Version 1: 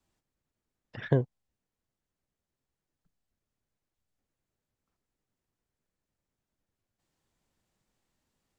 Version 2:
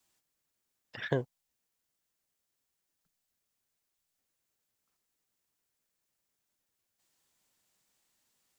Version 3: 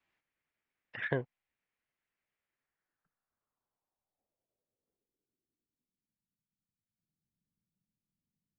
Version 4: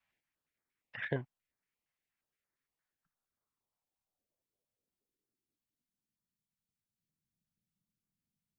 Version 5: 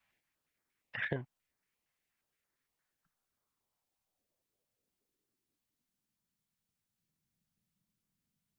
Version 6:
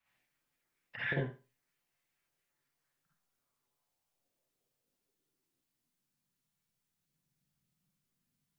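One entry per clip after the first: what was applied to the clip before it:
tilt EQ +3 dB/octave
low-pass sweep 2.2 kHz -> 180 Hz, 2.42–6.42 s; trim -3 dB
step-sequenced notch 8.6 Hz 350–2900 Hz; trim -1 dB
compression 10:1, threshold -36 dBFS, peak gain reduction 8 dB; trim +4.5 dB
reverberation RT60 0.30 s, pre-delay 44 ms, DRR -6 dB; trim -5 dB

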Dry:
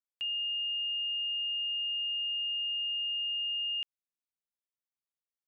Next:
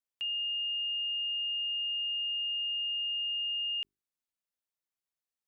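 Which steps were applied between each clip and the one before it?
hum notches 50/100/150/200/250/300/350/400 Hz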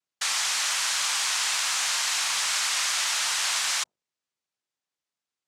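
noise-vocoded speech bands 2; trim +7 dB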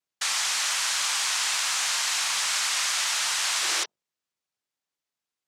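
painted sound noise, 3.61–3.86 s, 300–6100 Hz -34 dBFS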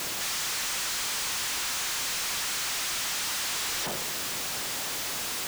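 one-bit comparator; trim -2.5 dB

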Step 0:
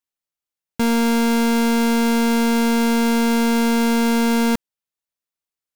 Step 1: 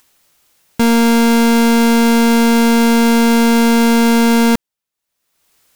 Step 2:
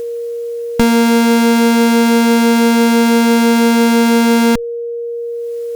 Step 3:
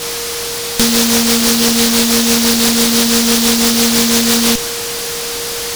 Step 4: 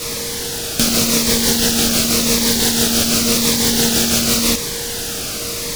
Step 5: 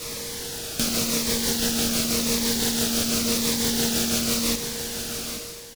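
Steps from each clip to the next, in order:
upward compressor, threshold -42 dBFS; trim +6.5 dB
one-sided clip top -17 dBFS, bottom -11 dBFS; compression, threshold -19 dBFS, peak gain reduction 6 dB; whistle 470 Hz -28 dBFS; trim +9 dB
dynamic bell 540 Hz, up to +7 dB, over -29 dBFS; delay time shaken by noise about 4.7 kHz, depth 0.44 ms; trim -3 dB
bass shelf 280 Hz -10.5 dB; in parallel at -7 dB: sample-and-hold 41×; on the sum: Shepard-style phaser falling 0.9 Hz; trim -2.5 dB
fade out at the end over 0.50 s; delay 832 ms -10.5 dB; trim -9 dB

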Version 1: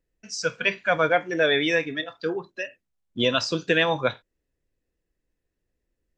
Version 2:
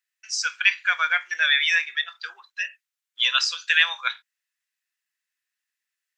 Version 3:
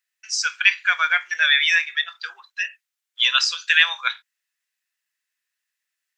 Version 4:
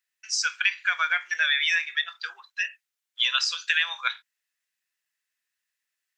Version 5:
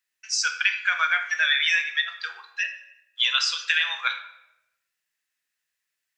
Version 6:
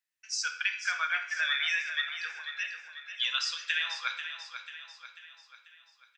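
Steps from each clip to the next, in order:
high-pass 1.4 kHz 24 dB/octave; trim +5.5 dB
bass shelf 300 Hz -10.5 dB; trim +3 dB
compression 4:1, threshold -18 dBFS, peak gain reduction 8 dB; trim -2 dB
simulated room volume 320 m³, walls mixed, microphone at 0.56 m; trim +1 dB
feedback delay 491 ms, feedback 50%, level -9.5 dB; trim -8 dB

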